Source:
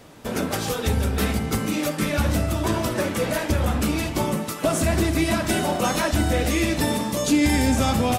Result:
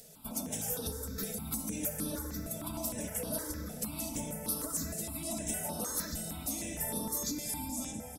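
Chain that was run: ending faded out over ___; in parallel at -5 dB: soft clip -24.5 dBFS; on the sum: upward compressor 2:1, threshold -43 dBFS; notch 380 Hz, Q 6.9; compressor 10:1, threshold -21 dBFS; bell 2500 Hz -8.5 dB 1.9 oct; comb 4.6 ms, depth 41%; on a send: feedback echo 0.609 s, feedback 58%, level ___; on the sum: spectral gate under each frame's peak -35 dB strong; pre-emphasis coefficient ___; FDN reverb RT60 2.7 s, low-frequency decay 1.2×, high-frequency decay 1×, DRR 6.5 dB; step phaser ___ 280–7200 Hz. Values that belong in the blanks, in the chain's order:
0.63 s, -14.5 dB, 0.8, 6.5 Hz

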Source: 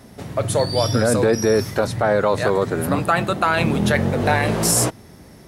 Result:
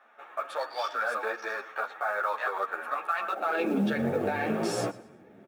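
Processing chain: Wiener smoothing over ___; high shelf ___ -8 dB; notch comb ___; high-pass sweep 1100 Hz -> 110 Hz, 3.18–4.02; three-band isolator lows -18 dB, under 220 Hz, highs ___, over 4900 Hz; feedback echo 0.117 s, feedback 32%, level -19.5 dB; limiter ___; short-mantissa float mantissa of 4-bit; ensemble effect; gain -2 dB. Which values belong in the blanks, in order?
9 samples, 8800 Hz, 1000 Hz, -15 dB, -14.5 dBFS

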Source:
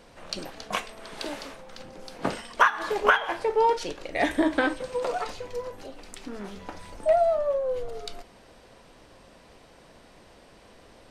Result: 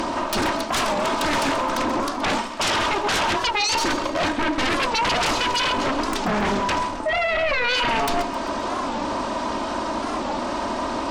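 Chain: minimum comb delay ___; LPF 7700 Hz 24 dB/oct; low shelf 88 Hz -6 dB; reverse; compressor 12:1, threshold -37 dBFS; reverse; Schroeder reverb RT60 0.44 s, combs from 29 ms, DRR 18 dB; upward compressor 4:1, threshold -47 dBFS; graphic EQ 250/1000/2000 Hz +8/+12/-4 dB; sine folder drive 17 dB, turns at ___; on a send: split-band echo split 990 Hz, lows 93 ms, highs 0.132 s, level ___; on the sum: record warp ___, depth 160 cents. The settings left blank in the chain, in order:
3.2 ms, -18.5 dBFS, -13 dB, 45 rpm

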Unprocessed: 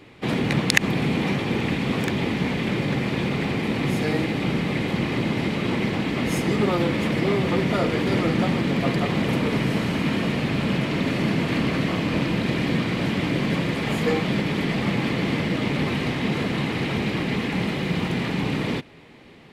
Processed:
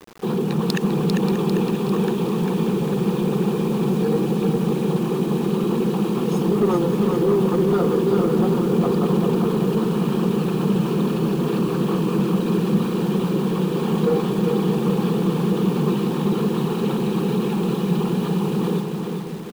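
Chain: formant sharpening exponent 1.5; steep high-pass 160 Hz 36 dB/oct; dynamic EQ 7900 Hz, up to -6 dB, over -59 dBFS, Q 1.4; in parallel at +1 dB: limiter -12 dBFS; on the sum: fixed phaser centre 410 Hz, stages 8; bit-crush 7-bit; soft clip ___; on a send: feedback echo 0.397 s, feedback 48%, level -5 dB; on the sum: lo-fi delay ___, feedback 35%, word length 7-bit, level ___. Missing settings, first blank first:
-12 dBFS, 0.583 s, -12 dB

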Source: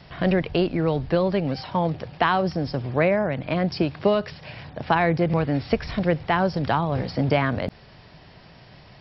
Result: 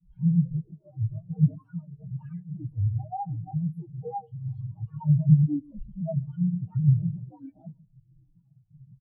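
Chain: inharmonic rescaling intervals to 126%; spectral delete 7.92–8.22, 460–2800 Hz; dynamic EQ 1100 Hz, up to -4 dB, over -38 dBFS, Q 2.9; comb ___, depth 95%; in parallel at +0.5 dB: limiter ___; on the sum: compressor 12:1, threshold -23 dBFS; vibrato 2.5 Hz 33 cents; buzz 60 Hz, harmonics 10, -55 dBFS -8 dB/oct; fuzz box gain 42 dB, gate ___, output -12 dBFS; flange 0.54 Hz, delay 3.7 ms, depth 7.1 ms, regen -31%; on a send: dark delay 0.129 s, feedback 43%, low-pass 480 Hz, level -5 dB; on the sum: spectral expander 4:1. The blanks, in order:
6.4 ms, -17 dBFS, -49 dBFS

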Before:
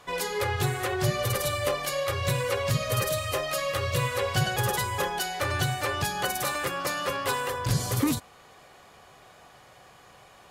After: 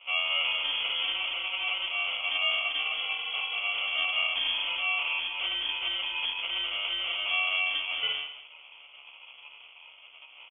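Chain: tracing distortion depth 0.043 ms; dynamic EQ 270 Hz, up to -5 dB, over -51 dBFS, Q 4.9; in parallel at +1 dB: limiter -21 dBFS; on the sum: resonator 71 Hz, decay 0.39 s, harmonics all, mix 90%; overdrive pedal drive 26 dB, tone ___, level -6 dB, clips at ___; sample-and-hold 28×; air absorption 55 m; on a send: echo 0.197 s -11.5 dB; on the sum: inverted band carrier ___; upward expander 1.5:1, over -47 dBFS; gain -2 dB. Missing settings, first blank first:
1300 Hz, -17 dBFS, 3300 Hz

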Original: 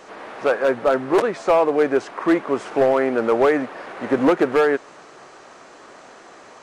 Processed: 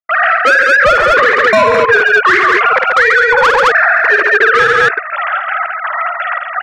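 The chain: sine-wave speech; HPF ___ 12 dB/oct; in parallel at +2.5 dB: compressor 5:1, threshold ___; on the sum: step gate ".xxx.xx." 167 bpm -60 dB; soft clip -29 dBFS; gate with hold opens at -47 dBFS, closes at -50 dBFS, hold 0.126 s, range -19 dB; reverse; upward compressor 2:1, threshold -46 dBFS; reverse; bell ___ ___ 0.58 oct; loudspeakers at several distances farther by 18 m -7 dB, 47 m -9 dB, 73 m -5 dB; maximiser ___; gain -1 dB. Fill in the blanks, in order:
1200 Hz, -41 dBFS, 1600 Hz, +8 dB, +28 dB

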